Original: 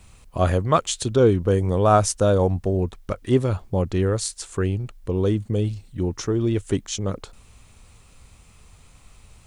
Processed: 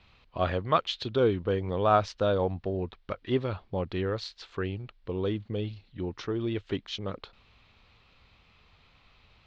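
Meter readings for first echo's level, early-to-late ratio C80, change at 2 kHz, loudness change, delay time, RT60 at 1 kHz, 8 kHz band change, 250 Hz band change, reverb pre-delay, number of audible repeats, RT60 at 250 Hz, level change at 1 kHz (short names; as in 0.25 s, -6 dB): none, none, -3.5 dB, -8.0 dB, none, none, under -20 dB, -9.0 dB, none, none, none, -5.0 dB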